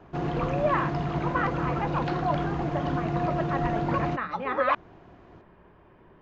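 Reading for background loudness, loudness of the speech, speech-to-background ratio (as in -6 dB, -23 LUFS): -29.5 LUFS, -31.0 LUFS, -1.5 dB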